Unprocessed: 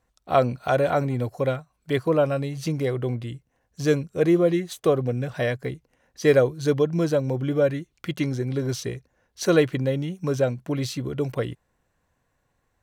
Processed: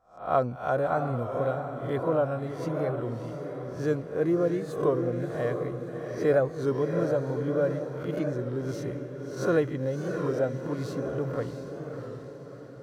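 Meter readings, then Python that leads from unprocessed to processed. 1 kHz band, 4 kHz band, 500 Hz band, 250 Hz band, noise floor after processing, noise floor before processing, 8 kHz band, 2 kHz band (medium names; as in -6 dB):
-2.5 dB, under -10 dB, -4.0 dB, -5.0 dB, -42 dBFS, -73 dBFS, under -10 dB, -6.0 dB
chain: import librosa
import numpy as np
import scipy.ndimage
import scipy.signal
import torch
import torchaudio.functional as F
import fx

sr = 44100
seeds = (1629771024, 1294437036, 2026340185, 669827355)

p1 = fx.spec_swells(x, sr, rise_s=0.41)
p2 = fx.high_shelf_res(p1, sr, hz=1800.0, db=-8.5, q=1.5)
p3 = p2 + fx.echo_diffused(p2, sr, ms=664, feedback_pct=50, wet_db=-6.5, dry=0)
p4 = fx.record_warp(p3, sr, rpm=33.33, depth_cents=100.0)
y = p4 * 10.0 ** (-7.0 / 20.0)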